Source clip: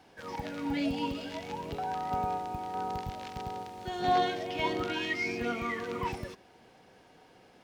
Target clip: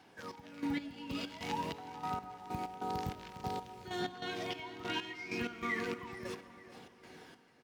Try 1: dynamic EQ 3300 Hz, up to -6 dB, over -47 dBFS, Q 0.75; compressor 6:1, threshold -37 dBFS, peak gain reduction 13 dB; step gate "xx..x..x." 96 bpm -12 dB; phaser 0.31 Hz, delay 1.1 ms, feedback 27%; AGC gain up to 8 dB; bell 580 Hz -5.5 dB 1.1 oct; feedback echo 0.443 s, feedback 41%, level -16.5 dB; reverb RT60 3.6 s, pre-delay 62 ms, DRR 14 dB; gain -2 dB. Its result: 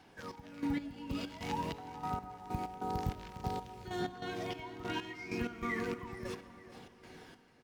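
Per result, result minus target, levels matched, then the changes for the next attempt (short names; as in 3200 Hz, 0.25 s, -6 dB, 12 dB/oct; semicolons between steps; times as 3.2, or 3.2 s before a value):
125 Hz band +4.0 dB; 4000 Hz band -4.0 dB
add after compressor: HPF 150 Hz 6 dB/oct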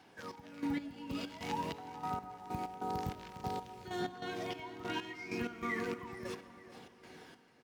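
4000 Hz band -3.0 dB
remove: dynamic EQ 3300 Hz, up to -6 dB, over -47 dBFS, Q 0.75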